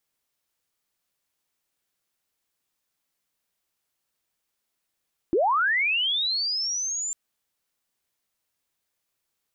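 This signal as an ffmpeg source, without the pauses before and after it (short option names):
-f lavfi -i "aevalsrc='pow(10,(-18-9*t/1.8)/20)*sin(2*PI*(300*t+7000*t*t/(2*1.8)))':d=1.8:s=44100"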